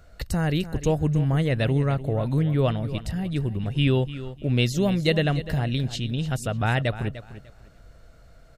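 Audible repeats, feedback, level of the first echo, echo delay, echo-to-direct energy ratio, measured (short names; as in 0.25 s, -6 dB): 2, 23%, -14.0 dB, 0.298 s, -13.5 dB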